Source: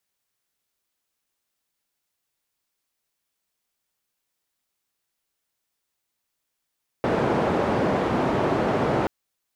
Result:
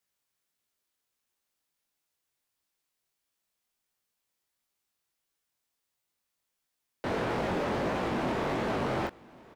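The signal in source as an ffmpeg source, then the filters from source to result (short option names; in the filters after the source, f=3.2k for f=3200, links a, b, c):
-f lavfi -i "anoisesrc=c=white:d=2.03:r=44100:seed=1,highpass=f=110,lowpass=f=660,volume=-2.2dB"
-af "asoftclip=type=hard:threshold=-25.5dB,flanger=delay=16.5:depth=7.8:speed=1.5,aecho=1:1:1096:0.0708"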